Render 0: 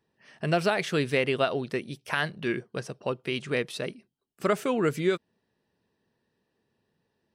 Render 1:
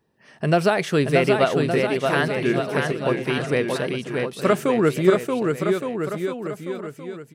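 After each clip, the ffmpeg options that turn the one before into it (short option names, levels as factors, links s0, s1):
-filter_complex "[0:a]equalizer=f=3400:w=0.54:g=-5,asplit=2[s0][s1];[s1]aecho=0:1:630|1166|1621|2008|2336:0.631|0.398|0.251|0.158|0.1[s2];[s0][s2]amix=inputs=2:normalize=0,volume=2.24"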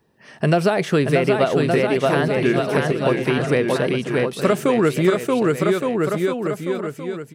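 -filter_complex "[0:a]acrossover=split=850|2400[s0][s1][s2];[s0]acompressor=threshold=0.0891:ratio=4[s3];[s1]acompressor=threshold=0.0224:ratio=4[s4];[s2]acompressor=threshold=0.0112:ratio=4[s5];[s3][s4][s5]amix=inputs=3:normalize=0,volume=2"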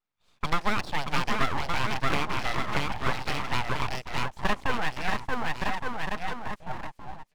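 -af "highpass=530,lowpass=6200,afwtdn=0.0282,aeval=exprs='abs(val(0))':c=same,volume=0.794"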